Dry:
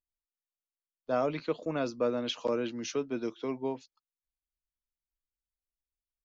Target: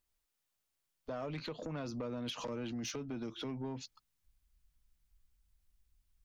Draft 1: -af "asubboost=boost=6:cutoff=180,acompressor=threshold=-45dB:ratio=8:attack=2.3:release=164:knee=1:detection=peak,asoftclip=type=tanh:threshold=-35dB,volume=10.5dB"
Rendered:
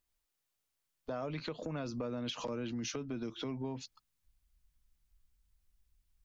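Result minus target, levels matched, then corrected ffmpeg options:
soft clip: distortion -13 dB
-af "asubboost=boost=6:cutoff=180,acompressor=threshold=-45dB:ratio=8:attack=2.3:release=164:knee=1:detection=peak,asoftclip=type=tanh:threshold=-43.5dB,volume=10.5dB"

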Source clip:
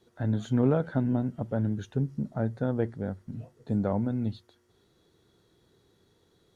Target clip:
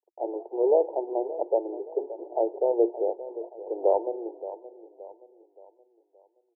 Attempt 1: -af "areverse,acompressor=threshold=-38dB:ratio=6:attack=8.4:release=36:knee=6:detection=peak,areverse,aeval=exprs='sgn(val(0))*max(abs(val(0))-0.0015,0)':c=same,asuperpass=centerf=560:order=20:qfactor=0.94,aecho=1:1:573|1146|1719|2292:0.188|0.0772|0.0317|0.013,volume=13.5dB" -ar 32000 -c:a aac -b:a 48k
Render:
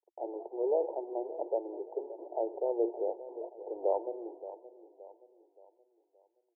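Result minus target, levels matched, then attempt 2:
compressor: peak gain reduction +8 dB
-af "areverse,acompressor=threshold=-28.5dB:ratio=6:attack=8.4:release=36:knee=6:detection=peak,areverse,aeval=exprs='sgn(val(0))*max(abs(val(0))-0.0015,0)':c=same,asuperpass=centerf=560:order=20:qfactor=0.94,aecho=1:1:573|1146|1719|2292:0.188|0.0772|0.0317|0.013,volume=13.5dB" -ar 32000 -c:a aac -b:a 48k

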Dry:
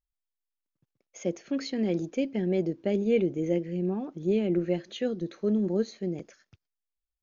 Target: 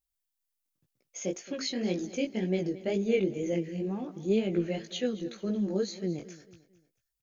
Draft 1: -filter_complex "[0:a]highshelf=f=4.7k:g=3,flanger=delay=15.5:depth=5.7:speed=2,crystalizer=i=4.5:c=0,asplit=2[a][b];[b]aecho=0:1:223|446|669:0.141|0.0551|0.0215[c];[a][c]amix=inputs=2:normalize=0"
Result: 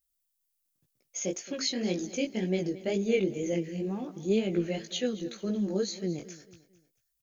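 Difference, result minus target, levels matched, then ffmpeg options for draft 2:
8000 Hz band +5.0 dB
-filter_complex "[0:a]highshelf=f=4.7k:g=-5,flanger=delay=15.5:depth=5.7:speed=2,crystalizer=i=4.5:c=0,asplit=2[a][b];[b]aecho=0:1:223|446|669:0.141|0.0551|0.0215[c];[a][c]amix=inputs=2:normalize=0"

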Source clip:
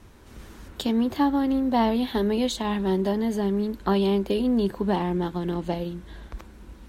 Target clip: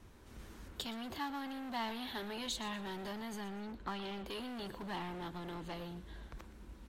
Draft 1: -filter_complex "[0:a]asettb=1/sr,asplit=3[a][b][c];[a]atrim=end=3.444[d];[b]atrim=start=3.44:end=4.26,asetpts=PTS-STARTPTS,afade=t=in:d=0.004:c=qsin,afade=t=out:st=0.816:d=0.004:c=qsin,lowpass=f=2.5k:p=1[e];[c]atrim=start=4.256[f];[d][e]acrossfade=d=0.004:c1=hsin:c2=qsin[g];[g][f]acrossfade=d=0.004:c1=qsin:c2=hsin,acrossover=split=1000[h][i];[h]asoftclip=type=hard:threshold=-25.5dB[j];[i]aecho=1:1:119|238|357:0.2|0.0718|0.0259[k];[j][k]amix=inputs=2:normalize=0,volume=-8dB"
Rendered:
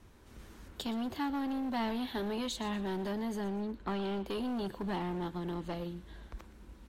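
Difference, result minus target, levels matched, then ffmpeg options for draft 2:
hard clip: distortion -5 dB
-filter_complex "[0:a]asettb=1/sr,asplit=3[a][b][c];[a]atrim=end=3.444[d];[b]atrim=start=3.44:end=4.26,asetpts=PTS-STARTPTS,afade=t=in:d=0.004:c=qsin,afade=t=out:st=0.816:d=0.004:c=qsin,lowpass=f=2.5k:p=1[e];[c]atrim=start=4.256[f];[d][e]acrossfade=d=0.004:c1=hsin:c2=qsin[g];[g][f]acrossfade=d=0.004:c1=qsin:c2=hsin,acrossover=split=1000[h][i];[h]asoftclip=type=hard:threshold=-35.5dB[j];[i]aecho=1:1:119|238|357:0.2|0.0718|0.0259[k];[j][k]amix=inputs=2:normalize=0,volume=-8dB"

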